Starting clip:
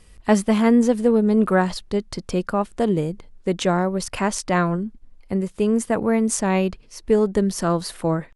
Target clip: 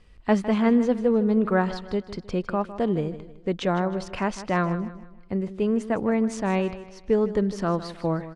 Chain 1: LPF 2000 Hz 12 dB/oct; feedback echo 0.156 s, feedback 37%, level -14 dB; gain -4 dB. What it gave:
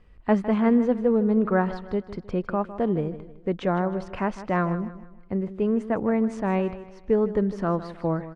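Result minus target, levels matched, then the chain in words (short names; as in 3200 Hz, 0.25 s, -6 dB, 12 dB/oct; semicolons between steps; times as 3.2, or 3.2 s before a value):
4000 Hz band -8.0 dB
LPF 4000 Hz 12 dB/oct; feedback echo 0.156 s, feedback 37%, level -14 dB; gain -4 dB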